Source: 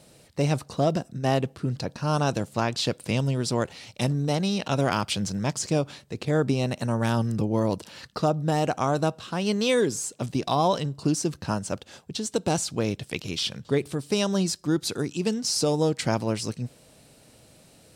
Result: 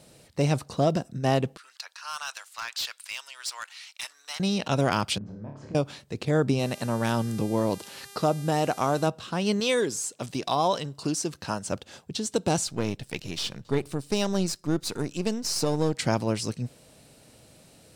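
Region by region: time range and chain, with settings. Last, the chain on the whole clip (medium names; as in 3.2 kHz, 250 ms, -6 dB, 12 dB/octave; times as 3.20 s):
1.57–4.40 s: high-pass 1.2 kHz 24 dB/octave + hard clipper -26.5 dBFS
5.18–5.75 s: low-pass 1 kHz + compression 16:1, threshold -36 dBFS + flutter echo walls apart 4.8 m, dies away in 0.46 s
6.58–9.06 s: bass shelf 94 Hz -10 dB + mains buzz 400 Hz, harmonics 32, -48 dBFS -1 dB/octave
9.60–11.66 s: bass shelf 300 Hz -8.5 dB + tape noise reduction on one side only encoder only
12.67–15.95 s: partial rectifier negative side -7 dB + band-stop 3.3 kHz, Q 20
whole clip: none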